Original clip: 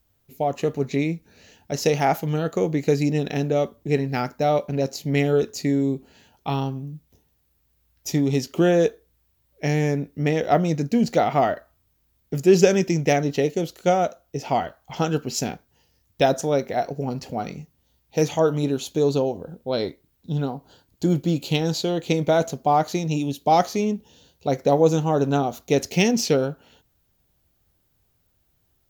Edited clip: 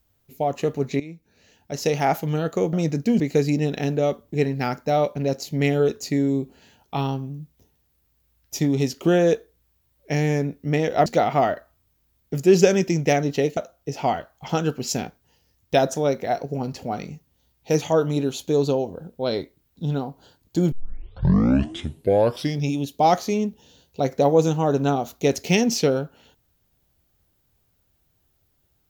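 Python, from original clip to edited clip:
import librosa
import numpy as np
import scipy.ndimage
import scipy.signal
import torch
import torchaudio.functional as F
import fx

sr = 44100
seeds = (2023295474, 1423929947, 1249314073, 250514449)

y = fx.edit(x, sr, fx.fade_in_from(start_s=1.0, length_s=1.16, floor_db=-16.0),
    fx.move(start_s=10.59, length_s=0.47, to_s=2.73),
    fx.cut(start_s=13.57, length_s=0.47),
    fx.tape_start(start_s=21.19, length_s=2.06), tone=tone)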